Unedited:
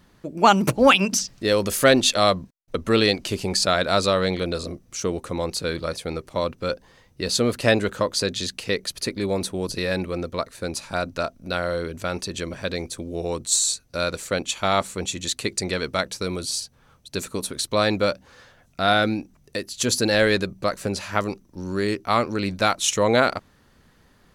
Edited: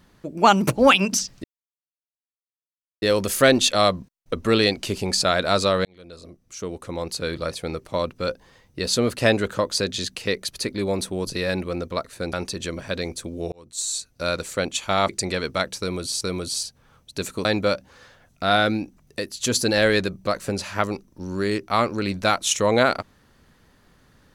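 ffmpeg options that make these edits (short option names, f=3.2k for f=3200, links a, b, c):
-filter_complex "[0:a]asplit=8[a][b][c][d][e][f][g][h];[a]atrim=end=1.44,asetpts=PTS-STARTPTS,afade=t=out:st=1.436:d=0.004:c=hsin,apad=pad_dur=1.58[i];[b]atrim=start=1.44:end=4.27,asetpts=PTS-STARTPTS,afade=t=in:d=0.004:c=hsin,afade=t=out:st=2.826:d=0.004:c=hsin[j];[c]atrim=start=4.27:end=10.752,asetpts=PTS-STARTPTS,afade=t=in:d=1.6[k];[d]atrim=start=12.068:end=13.26,asetpts=PTS-STARTPTS,afade=t=out:st=1.188:d=0.004:c=hsin[l];[e]atrim=start=13.26:end=14.832,asetpts=PTS-STARTPTS,afade=t=in:d=0.72[m];[f]atrim=start=15.478:end=16.602[n];[g]atrim=start=16.178:end=17.422[o];[h]atrim=start=17.818[p];[i][j][k]concat=n=3:v=0:a=1[q];[l][m]concat=n=2:v=0:a=1[r];[q][r]acrossfade=d=0.004:c1=hsin:c2=hsin[s];[s][n]acrossfade=d=0.004:c1=hsin:c2=hsin[t];[t][o]acrossfade=d=0.004:c1=hsin:c2=hsin[u];[u][p]acrossfade=d=0.004:c1=hsin:c2=hsin"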